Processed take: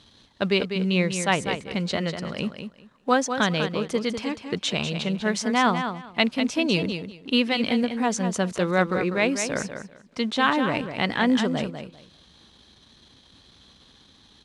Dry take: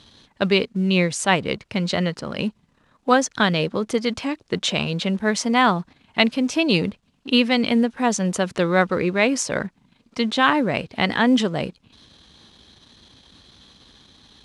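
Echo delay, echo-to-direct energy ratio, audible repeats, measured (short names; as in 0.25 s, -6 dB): 0.197 s, -8.0 dB, 2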